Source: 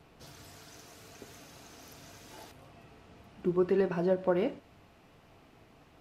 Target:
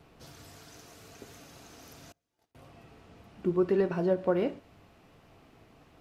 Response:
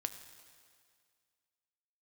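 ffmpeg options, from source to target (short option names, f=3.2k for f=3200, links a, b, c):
-filter_complex "[0:a]asettb=1/sr,asplit=3[a][b][c];[a]atrim=end=2.124[d];[b]atrim=start=2.12:end=2.55,asetpts=PTS-STARTPTS,afade=t=in:d=0.004:c=qsin,afade=t=out:st=0.426:d=0.004:c=qsin,agate=range=-35dB:threshold=-44dB:ratio=16:detection=peak[e];[c]atrim=start=2.546[f];[d][e]acrossfade=d=0.004:c1=hsin:c2=qsin[g];[g][f]acrossfade=d=0.004:c1=qsin:c2=hsin,asplit=2[h][i];[i]asuperstop=centerf=1000:order=4:qfactor=5.9[j];[1:a]atrim=start_sample=2205,atrim=end_sample=4410,lowpass=1.2k[k];[j][k]afir=irnorm=-1:irlink=0,volume=-14.5dB[l];[h][l]amix=inputs=2:normalize=0"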